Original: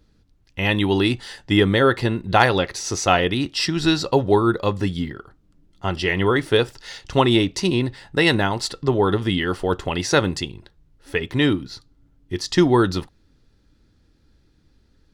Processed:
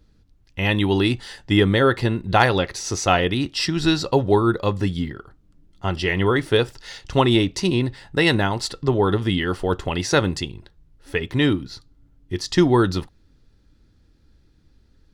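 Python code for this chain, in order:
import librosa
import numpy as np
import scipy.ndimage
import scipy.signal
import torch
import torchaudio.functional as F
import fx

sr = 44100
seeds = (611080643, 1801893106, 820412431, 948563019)

y = fx.low_shelf(x, sr, hz=120.0, db=4.5)
y = F.gain(torch.from_numpy(y), -1.0).numpy()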